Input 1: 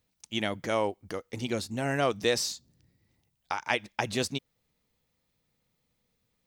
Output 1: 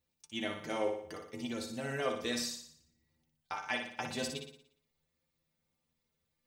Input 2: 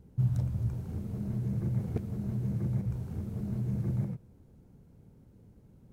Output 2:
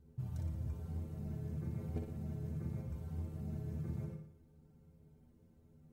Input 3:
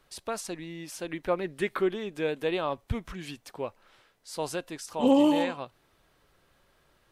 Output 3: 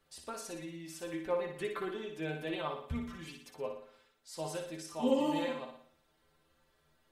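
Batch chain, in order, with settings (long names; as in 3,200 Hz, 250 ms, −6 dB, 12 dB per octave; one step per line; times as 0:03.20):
stiff-string resonator 77 Hz, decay 0.25 s, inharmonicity 0.008
flutter between parallel walls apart 10.1 metres, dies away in 0.59 s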